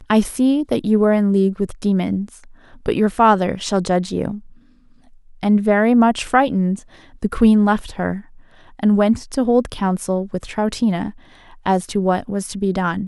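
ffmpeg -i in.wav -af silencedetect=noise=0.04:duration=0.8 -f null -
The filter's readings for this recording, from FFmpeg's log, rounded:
silence_start: 4.38
silence_end: 5.43 | silence_duration: 1.05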